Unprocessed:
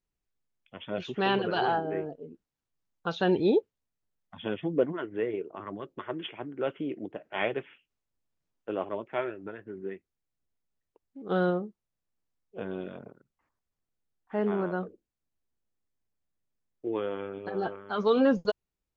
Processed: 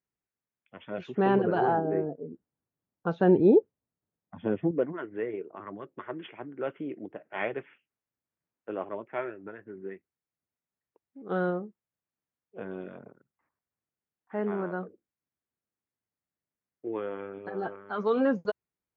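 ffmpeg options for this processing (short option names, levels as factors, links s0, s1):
-filter_complex "[0:a]asettb=1/sr,asplit=3[s0][s1][s2];[s0]atrim=end=1.154[s3];[s1]atrim=start=1.15:end=4.71,asetpts=PTS-STARTPTS,afade=t=in:d=0.004:c=qsin,afade=t=out:st=3.556:d=0.004:c=qsin,tiltshelf=f=1200:g=8.5[s4];[s2]atrim=start=4.706[s5];[s3][s4]acrossfade=d=0.004:c1=hsin:c2=qsin[s6];[s6][s5]acrossfade=d=0.004:c1=qsin:c2=hsin,highpass=98,highshelf=f=2600:t=q:w=1.5:g=-6.5,volume=0.75"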